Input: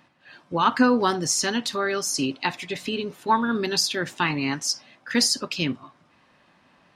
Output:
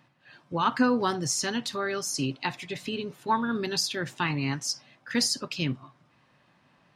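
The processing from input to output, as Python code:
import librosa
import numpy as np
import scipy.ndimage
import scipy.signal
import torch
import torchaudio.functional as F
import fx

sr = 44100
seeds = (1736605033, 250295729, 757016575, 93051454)

y = fx.peak_eq(x, sr, hz=130.0, db=10.5, octaves=0.46)
y = y * 10.0 ** (-5.0 / 20.0)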